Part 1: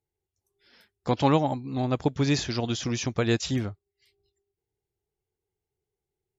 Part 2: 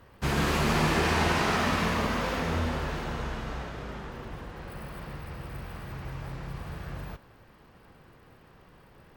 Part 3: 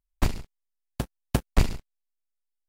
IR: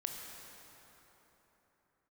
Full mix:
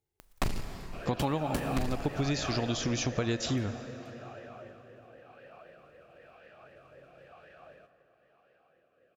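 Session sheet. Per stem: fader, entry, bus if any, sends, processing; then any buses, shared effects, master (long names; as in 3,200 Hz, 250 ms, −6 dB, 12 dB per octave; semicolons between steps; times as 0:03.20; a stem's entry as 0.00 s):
−2.0 dB, 0.00 s, send −8.5 dB, no processing
+0.5 dB, 0.70 s, send −5.5 dB, rotating-speaker cabinet horn 1 Hz; noise that follows the level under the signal 20 dB; formant filter swept between two vowels a-e 3.9 Hz
−3.0 dB, 0.20 s, send −8.5 dB, parametric band 62 Hz −7 dB 0.96 octaves; upward compression, threshold −36 dBFS; leveller curve on the samples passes 3; automatic ducking −10 dB, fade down 0.35 s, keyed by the first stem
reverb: on, pre-delay 18 ms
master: downward compressor 10 to 1, threshold −26 dBFS, peak gain reduction 11 dB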